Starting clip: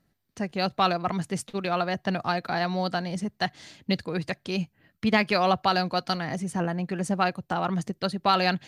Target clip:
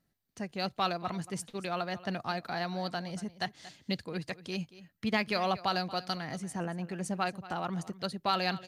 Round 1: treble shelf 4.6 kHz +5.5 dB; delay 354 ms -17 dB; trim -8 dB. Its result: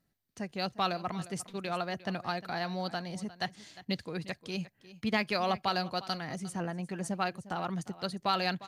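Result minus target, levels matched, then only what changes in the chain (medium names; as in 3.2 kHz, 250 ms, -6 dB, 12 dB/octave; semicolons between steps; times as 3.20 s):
echo 123 ms late
change: delay 231 ms -17 dB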